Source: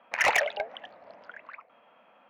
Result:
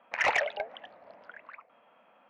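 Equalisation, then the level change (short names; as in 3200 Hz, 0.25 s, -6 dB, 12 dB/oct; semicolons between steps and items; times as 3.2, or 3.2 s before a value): air absorption 93 m; -2.0 dB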